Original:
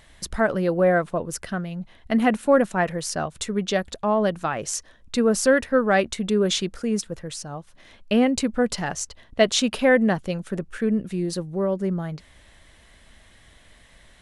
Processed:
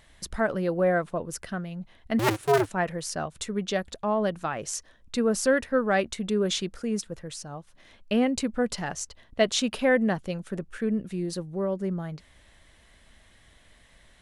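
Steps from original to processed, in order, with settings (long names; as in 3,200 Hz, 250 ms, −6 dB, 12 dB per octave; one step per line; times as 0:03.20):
0:02.19–0:02.69: sub-harmonics by changed cycles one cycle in 2, inverted
level −4.5 dB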